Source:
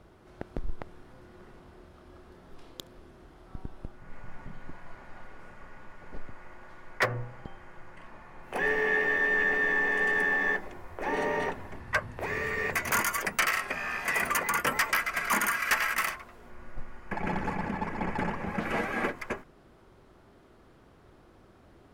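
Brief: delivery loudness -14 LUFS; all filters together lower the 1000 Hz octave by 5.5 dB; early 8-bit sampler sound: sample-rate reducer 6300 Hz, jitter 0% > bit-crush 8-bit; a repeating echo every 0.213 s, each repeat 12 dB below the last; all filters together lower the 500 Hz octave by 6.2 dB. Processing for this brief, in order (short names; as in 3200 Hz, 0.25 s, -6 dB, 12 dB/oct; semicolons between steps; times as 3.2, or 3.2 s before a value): bell 500 Hz -6.5 dB; bell 1000 Hz -5.5 dB; feedback echo 0.213 s, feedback 25%, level -12 dB; sample-rate reducer 6300 Hz, jitter 0%; bit-crush 8-bit; gain +16.5 dB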